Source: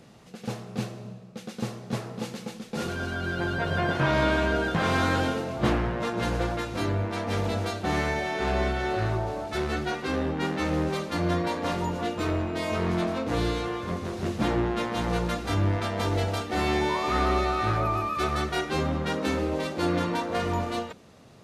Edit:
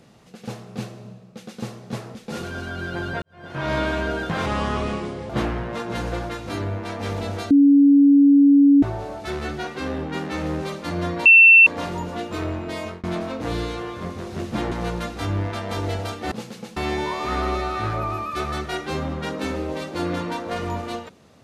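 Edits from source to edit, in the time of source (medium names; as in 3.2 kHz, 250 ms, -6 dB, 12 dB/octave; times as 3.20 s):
2.15–2.60 s: move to 16.60 s
3.67–4.16 s: fade in quadratic
4.91–5.57 s: speed 79%
7.78–9.10 s: bleep 282 Hz -9.5 dBFS
11.53 s: add tone 2.69 kHz -6.5 dBFS 0.41 s
12.65–12.90 s: fade out
14.58–15.00 s: delete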